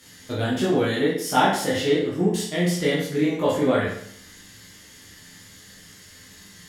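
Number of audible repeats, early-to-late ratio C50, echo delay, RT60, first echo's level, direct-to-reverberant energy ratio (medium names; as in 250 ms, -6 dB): no echo, 2.5 dB, no echo, 0.65 s, no echo, -8.0 dB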